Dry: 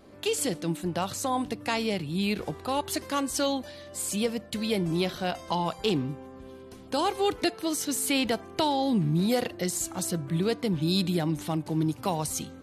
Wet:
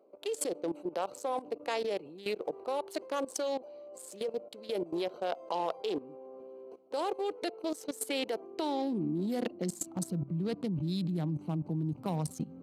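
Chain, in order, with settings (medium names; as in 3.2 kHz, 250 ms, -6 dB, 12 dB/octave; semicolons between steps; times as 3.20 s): local Wiener filter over 25 samples; high-pass sweep 470 Hz -> 160 Hz, 8.04–10.30 s; level held to a coarse grid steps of 16 dB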